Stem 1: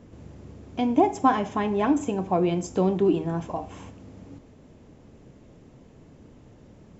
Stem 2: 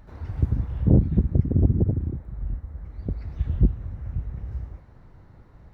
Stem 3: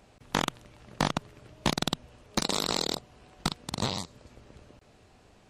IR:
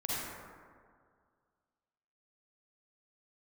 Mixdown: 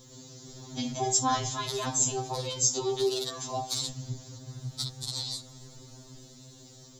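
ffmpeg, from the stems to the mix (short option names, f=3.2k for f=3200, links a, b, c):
-filter_complex "[0:a]highshelf=f=6.3k:g=9,volume=-1.5dB[a];[1:a]acrossover=split=110|560[b][c][d];[c]acompressor=threshold=-36dB:ratio=4[e];[d]acompressor=threshold=-55dB:ratio=4[f];[b][e][f]amix=inputs=3:normalize=0,asoftclip=type=tanh:threshold=-18dB,adelay=500,volume=0.5dB[g];[2:a]acompressor=threshold=-29dB:ratio=6,adelay=1350,volume=-11dB,asplit=3[h][i][j];[h]atrim=end=3.88,asetpts=PTS-STARTPTS,afade=t=out:st=3.876:d=0.004:c=hsin[k];[i]atrim=start=3.88:end=4.5,asetpts=PTS-STARTPTS,volume=0[l];[j]atrim=start=4.5,asetpts=PTS-STARTPTS,afade=t=in:d=0.004:c=hsin[m];[k][l][m]concat=n=3:v=0:a=1[n];[a][n]amix=inputs=2:normalize=0,highshelf=f=2.6k:g=11.5,alimiter=limit=-18dB:level=0:latency=1:release=13,volume=0dB[o];[g][o]amix=inputs=2:normalize=0,acrossover=split=460[p][q];[p]acompressor=threshold=-28dB:ratio=10[r];[r][q]amix=inputs=2:normalize=0,highshelf=f=3.2k:t=q:w=3:g=6.5,afftfilt=real='re*2.45*eq(mod(b,6),0)':imag='im*2.45*eq(mod(b,6),0)':win_size=2048:overlap=0.75"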